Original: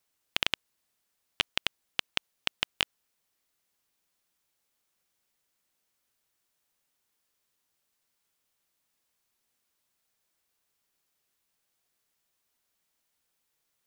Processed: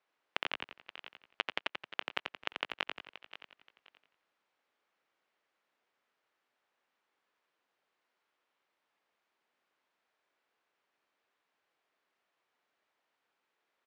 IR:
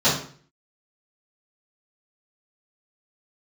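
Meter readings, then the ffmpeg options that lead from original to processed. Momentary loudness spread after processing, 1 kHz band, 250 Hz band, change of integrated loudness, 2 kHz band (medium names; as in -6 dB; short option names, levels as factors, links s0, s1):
15 LU, +0.5 dB, -4.5 dB, -7.0 dB, -3.5 dB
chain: -filter_complex "[0:a]asplit=2[s0][s1];[s1]aecho=0:1:527|1054:0.0891|0.0214[s2];[s0][s2]amix=inputs=2:normalize=0,acompressor=threshold=0.0282:ratio=6,highpass=380,lowpass=2200,asplit=2[s3][s4];[s4]asplit=5[s5][s6][s7][s8][s9];[s5]adelay=87,afreqshift=-61,volume=0.562[s10];[s6]adelay=174,afreqshift=-122,volume=0.224[s11];[s7]adelay=261,afreqshift=-183,volume=0.0902[s12];[s8]adelay=348,afreqshift=-244,volume=0.0359[s13];[s9]adelay=435,afreqshift=-305,volume=0.0145[s14];[s10][s11][s12][s13][s14]amix=inputs=5:normalize=0[s15];[s3][s15]amix=inputs=2:normalize=0,volume=1.68"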